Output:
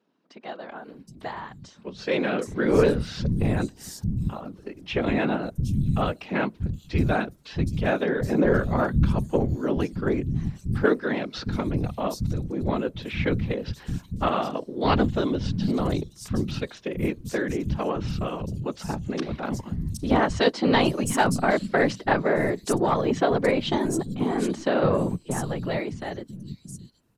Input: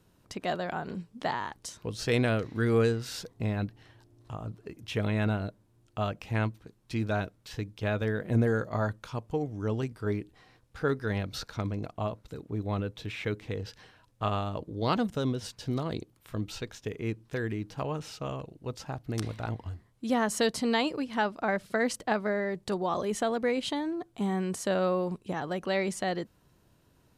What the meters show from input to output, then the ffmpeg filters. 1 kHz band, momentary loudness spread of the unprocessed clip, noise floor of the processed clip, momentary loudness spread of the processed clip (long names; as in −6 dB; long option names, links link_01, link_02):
+6.0 dB, 12 LU, −53 dBFS, 13 LU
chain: -filter_complex "[0:a]afftfilt=real='hypot(re,im)*cos(2*PI*random(0))':imag='hypot(re,im)*sin(2*PI*random(1))':win_size=512:overlap=0.75,dynaudnorm=framelen=340:gausssize=13:maxgain=12dB,aeval=exprs='0.501*(cos(1*acos(clip(val(0)/0.501,-1,1)))-cos(1*PI/2))+0.0398*(cos(4*acos(clip(val(0)/0.501,-1,1)))-cos(4*PI/2))':channel_layout=same,equalizer=frequency=210:width_type=o:width=1.6:gain=4.5,acrossover=split=200|5400[link_01][link_02][link_03];[link_01]adelay=630[link_04];[link_03]adelay=770[link_05];[link_04][link_02][link_05]amix=inputs=3:normalize=0"